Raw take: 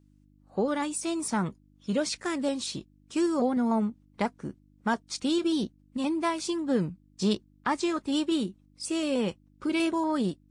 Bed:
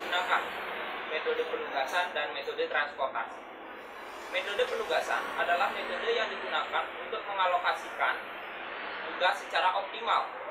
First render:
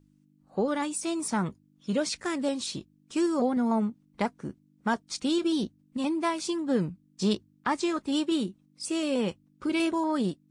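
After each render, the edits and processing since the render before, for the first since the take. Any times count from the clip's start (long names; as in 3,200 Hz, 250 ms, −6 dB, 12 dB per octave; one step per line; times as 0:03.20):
hum removal 50 Hz, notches 2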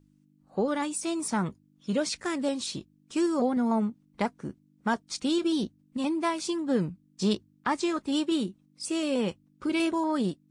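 no processing that can be heard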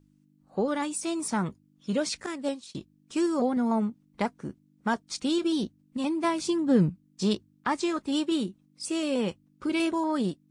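0:02.26–0:02.75: downward expander −26 dBFS
0:06.24–0:06.90: low-shelf EQ 230 Hz +11.5 dB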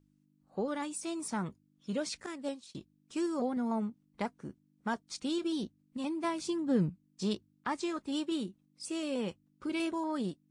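level −7 dB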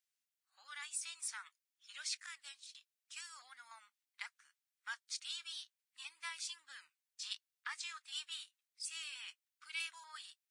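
inverse Chebyshev high-pass filter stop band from 460 Hz, stop band 60 dB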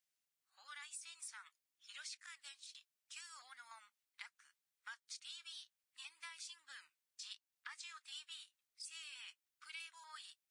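downward compressor 3 to 1, threshold −50 dBFS, peak gain reduction 10.5 dB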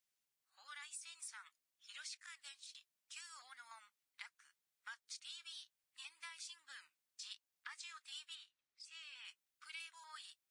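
0:01.98–0:02.39: high-pass filter 640 Hz
0:08.35–0:09.25: high-frequency loss of the air 99 metres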